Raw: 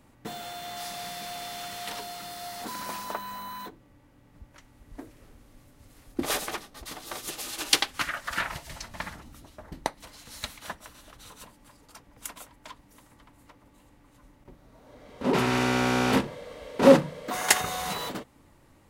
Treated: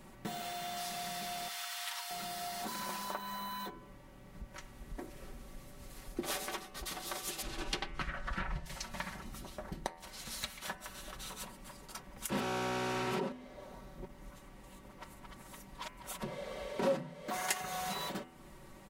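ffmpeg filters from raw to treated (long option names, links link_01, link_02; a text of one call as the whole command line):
ffmpeg -i in.wav -filter_complex "[0:a]asettb=1/sr,asplit=3[link_01][link_02][link_03];[link_01]atrim=end=1.484[link_04];[link_02]atrim=start=1.48:end=2.11,asetpts=PTS-STARTPTS,afade=type=in:duration=0.004:curve=qsin,afade=type=out:start_time=0.626:duration=0.004:curve=qsin,highpass=frequency=910:width=0.5412,highpass=frequency=910:width=1.3066[link_05];[link_03]atrim=start=2.106[link_06];[link_04][link_05]acrossfade=duration=0.004:curve1=hsin:curve2=qsin[link_07];[link_07][link_06]acrossfade=duration=0.004:curve1=qsin:curve2=hsin,asettb=1/sr,asplit=3[link_08][link_09][link_10];[link_08]atrim=end=7.424[link_11];[link_09]atrim=start=7.42:end=8.66,asetpts=PTS-STARTPTS,afade=type=in:duration=0.004:curve=qsin,afade=type=out:start_time=1.236:duration=0.004:curve=qsin,aemphasis=mode=reproduction:type=riaa[link_12];[link_10]atrim=start=8.656[link_13];[link_11][link_12]acrossfade=duration=0.004:curve1=hsin:curve2=qsin[link_14];[link_14][link_13]acrossfade=duration=0.004:curve1=qsin:curve2=hsin,asplit=3[link_15][link_16][link_17];[link_15]atrim=end=12.302[link_18];[link_16]atrim=start=12.298:end=16.232,asetpts=PTS-STARTPTS,areverse[link_19];[link_17]atrim=start=16.228[link_20];[link_18][link_19]acrossfade=duration=0.004:curve1=hsin:curve2=hsin[link_21];[link_21][link_20]acrossfade=duration=0.004:curve1=hsin:curve2=hsin,aecho=1:1:5.3:0.65,bandreject=frequency=83.7:width_type=h:width=4,bandreject=frequency=167.4:width_type=h:width=4,bandreject=frequency=251.1:width_type=h:width=4,bandreject=frequency=334.8:width_type=h:width=4,bandreject=frequency=418.5:width_type=h:width=4,bandreject=frequency=502.2:width_type=h:width=4,bandreject=frequency=585.9:width_type=h:width=4,bandreject=frequency=669.6:width_type=h:width=4,bandreject=frequency=753.3:width_type=h:width=4,bandreject=frequency=837:width_type=h:width=4,bandreject=frequency=920.7:width_type=h:width=4,bandreject=frequency=1004.4:width_type=h:width=4,bandreject=frequency=1088.1:width_type=h:width=4,bandreject=frequency=1171.8:width_type=h:width=4,bandreject=frequency=1255.5:width_type=h:width=4,bandreject=frequency=1339.2:width_type=h:width=4,bandreject=frequency=1422.9:width_type=h:width=4,bandreject=frequency=1506.6:width_type=h:width=4,bandreject=frequency=1590.3:width_type=h:width=4,bandreject=frequency=1674:width_type=h:width=4,bandreject=frequency=1757.7:width_type=h:width=4,bandreject=frequency=1841.4:width_type=h:width=4,bandreject=frequency=1925.1:width_type=h:width=4,bandreject=frequency=2008.8:width_type=h:width=4,bandreject=frequency=2092.5:width_type=h:width=4,bandreject=frequency=2176.2:width_type=h:width=4,bandreject=frequency=2259.9:width_type=h:width=4,bandreject=frequency=2343.6:width_type=h:width=4,bandreject=frequency=2427.3:width_type=h:width=4,bandreject=frequency=2511:width_type=h:width=4,bandreject=frequency=2594.7:width_type=h:width=4,bandreject=frequency=2678.4:width_type=h:width=4,bandreject=frequency=2762.1:width_type=h:width=4,bandreject=frequency=2845.8:width_type=h:width=4,bandreject=frequency=2929.5:width_type=h:width=4,bandreject=frequency=3013.2:width_type=h:width=4,acompressor=threshold=-45dB:ratio=2.5,volume=3.5dB" out.wav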